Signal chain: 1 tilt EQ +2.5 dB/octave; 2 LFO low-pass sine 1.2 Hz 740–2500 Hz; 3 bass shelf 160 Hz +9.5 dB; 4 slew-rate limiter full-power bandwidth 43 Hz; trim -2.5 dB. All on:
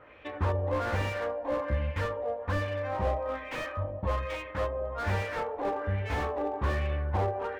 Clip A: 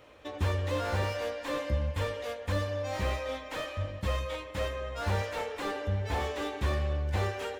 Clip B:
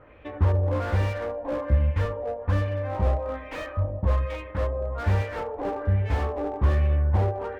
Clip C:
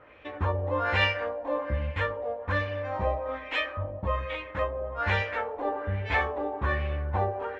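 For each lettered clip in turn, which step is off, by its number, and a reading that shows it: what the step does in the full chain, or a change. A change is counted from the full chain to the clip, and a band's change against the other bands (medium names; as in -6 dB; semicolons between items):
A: 2, 4 kHz band +6.5 dB; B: 1, 125 Hz band +9.0 dB; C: 4, distortion -5 dB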